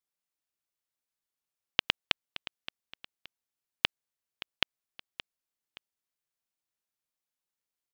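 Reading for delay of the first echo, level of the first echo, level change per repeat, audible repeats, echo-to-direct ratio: 572 ms, -15.5 dB, -8.5 dB, 2, -15.0 dB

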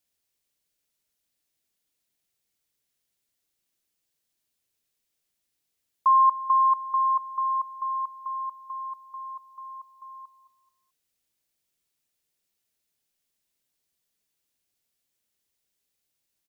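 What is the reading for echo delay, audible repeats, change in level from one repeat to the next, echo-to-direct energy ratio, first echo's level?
217 ms, 3, -8.5 dB, -15.5 dB, -16.0 dB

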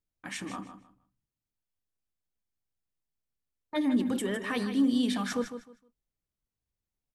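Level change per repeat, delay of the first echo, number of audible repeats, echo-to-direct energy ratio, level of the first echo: -13.0 dB, 155 ms, 2, -10.0 dB, -10.0 dB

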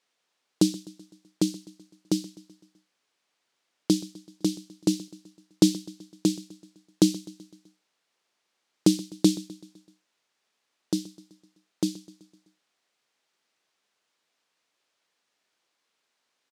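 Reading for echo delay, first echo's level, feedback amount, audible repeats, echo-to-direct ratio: 127 ms, -19.0 dB, 55%, 4, -17.5 dB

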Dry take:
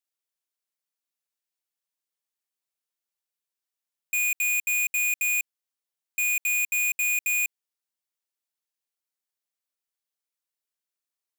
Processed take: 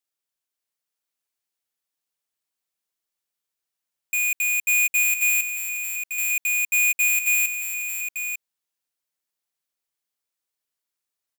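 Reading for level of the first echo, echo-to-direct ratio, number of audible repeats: -6.5 dB, -3.0 dB, 2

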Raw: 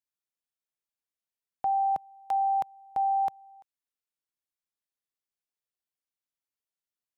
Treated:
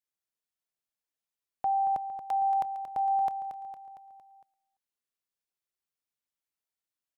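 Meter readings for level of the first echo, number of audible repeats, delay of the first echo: -9.5 dB, 5, 229 ms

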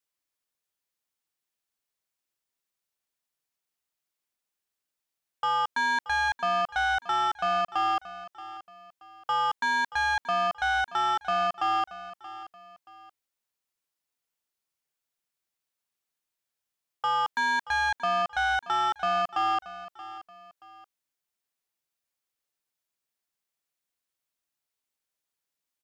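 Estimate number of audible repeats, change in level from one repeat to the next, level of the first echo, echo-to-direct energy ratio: 2, -9.0 dB, -15.5 dB, -15.0 dB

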